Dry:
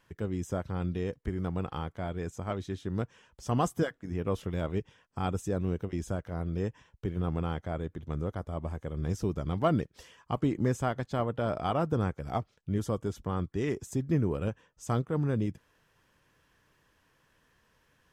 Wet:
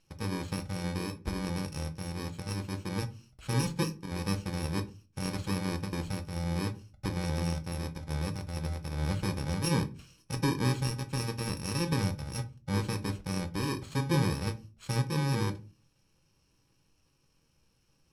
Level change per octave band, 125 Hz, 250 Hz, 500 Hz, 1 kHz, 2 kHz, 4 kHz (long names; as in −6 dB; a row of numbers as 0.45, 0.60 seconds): +1.0, −1.0, −5.5, −3.0, +4.0, +9.5 decibels